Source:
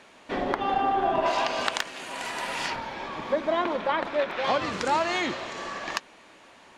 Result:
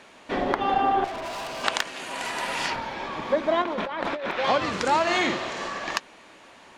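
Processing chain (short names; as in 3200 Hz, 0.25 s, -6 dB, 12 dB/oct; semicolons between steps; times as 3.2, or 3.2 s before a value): 1.04–1.64 tube stage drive 34 dB, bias 0.65; 3.62–4.31 negative-ratio compressor -32 dBFS, ratio -1; 5.02–5.68 doubler 49 ms -4 dB; gain +2.5 dB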